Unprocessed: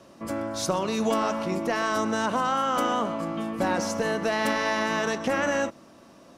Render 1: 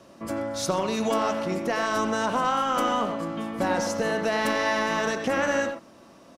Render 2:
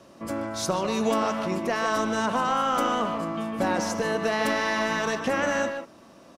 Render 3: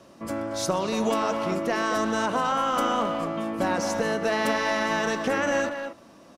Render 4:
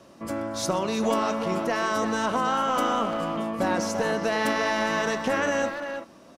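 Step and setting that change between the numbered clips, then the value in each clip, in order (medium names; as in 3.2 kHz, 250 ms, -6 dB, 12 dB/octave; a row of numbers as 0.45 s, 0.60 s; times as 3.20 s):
speakerphone echo, time: 90 ms, 150 ms, 230 ms, 340 ms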